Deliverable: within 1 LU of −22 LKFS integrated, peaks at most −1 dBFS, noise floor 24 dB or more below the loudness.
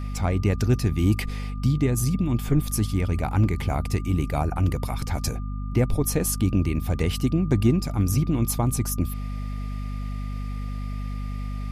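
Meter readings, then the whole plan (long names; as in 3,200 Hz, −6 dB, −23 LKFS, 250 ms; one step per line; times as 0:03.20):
mains hum 50 Hz; hum harmonics up to 250 Hz; level of the hum −27 dBFS; interfering tone 1,200 Hz; level of the tone −45 dBFS; integrated loudness −25.5 LKFS; sample peak −8.0 dBFS; target loudness −22.0 LKFS
→ hum removal 50 Hz, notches 5
notch filter 1,200 Hz, Q 30
level +3.5 dB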